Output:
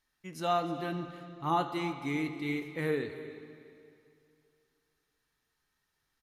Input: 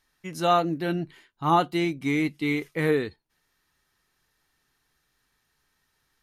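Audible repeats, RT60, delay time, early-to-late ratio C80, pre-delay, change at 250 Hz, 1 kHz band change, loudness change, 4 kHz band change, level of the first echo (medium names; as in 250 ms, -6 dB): 1, 2.6 s, 310 ms, 9.0 dB, 8 ms, -8.0 dB, -7.5 dB, -8.5 dB, -8.0 dB, -17.0 dB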